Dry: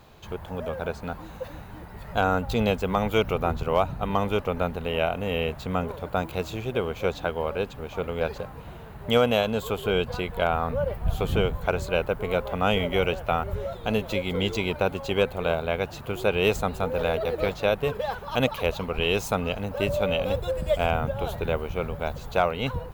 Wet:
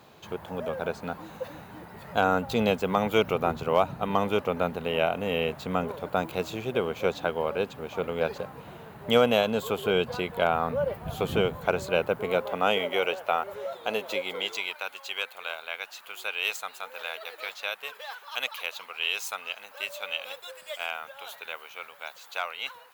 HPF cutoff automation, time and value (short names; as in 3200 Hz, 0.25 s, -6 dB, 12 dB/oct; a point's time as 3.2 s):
12.13 s 150 Hz
13 s 460 Hz
14.2 s 460 Hz
14.81 s 1500 Hz